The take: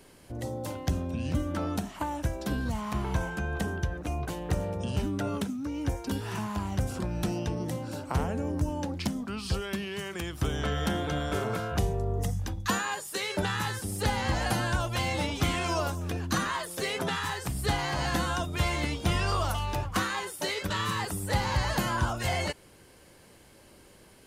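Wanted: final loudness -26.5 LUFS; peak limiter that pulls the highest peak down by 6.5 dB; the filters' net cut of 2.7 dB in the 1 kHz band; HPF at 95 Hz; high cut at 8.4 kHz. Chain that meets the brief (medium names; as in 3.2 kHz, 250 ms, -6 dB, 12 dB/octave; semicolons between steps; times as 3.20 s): high-pass 95 Hz; low-pass 8.4 kHz; peaking EQ 1 kHz -3.5 dB; trim +7 dB; peak limiter -15 dBFS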